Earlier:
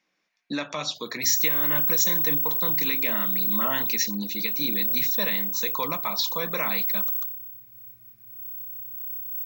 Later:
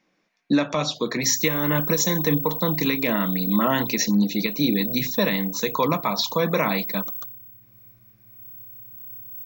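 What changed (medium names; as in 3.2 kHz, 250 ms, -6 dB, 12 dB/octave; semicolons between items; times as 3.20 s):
speech +7.0 dB; master: add tilt shelf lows +5.5 dB, about 840 Hz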